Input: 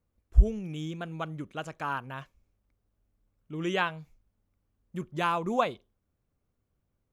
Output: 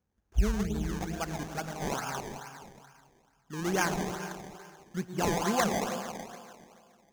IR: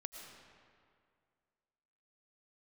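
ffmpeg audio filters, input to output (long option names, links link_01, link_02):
-filter_complex "[1:a]atrim=start_sample=2205[link_01];[0:a][link_01]afir=irnorm=-1:irlink=0,asplit=2[link_02][link_03];[link_03]volume=30.5dB,asoftclip=hard,volume=-30.5dB,volume=-8.5dB[link_04];[link_02][link_04]amix=inputs=2:normalize=0,highpass=41,acrusher=samples=22:mix=1:aa=0.000001:lfo=1:lforange=22:lforate=2.3,equalizer=frequency=200:width_type=o:width=0.33:gain=9,equalizer=frequency=400:width_type=o:width=0.33:gain=4,equalizer=frequency=800:width_type=o:width=0.33:gain=7,equalizer=frequency=1600:width_type=o:width=0.33:gain=6,equalizer=frequency=6300:width_type=o:width=0.33:gain=10,volume=-1.5dB"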